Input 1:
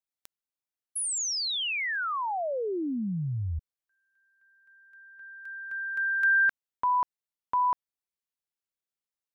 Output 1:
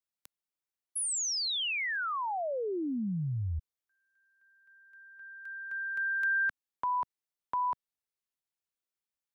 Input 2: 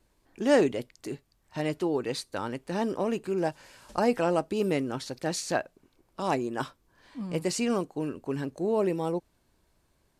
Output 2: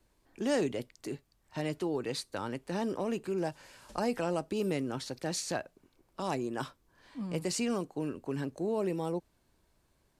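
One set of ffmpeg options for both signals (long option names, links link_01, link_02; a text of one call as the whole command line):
ffmpeg -i in.wav -filter_complex "[0:a]acrossover=split=180|3300[link_01][link_02][link_03];[link_02]acompressor=threshold=-29dB:ratio=2:attack=3:release=199:knee=2.83:detection=peak[link_04];[link_01][link_04][link_03]amix=inputs=3:normalize=0,volume=-2dB" out.wav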